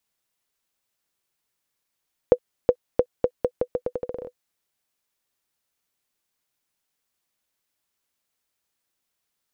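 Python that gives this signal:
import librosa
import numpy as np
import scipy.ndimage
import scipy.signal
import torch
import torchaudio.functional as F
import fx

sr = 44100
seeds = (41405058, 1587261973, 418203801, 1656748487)

y = fx.bouncing_ball(sr, first_gap_s=0.37, ratio=0.82, hz=496.0, decay_ms=65.0, level_db=-3.0)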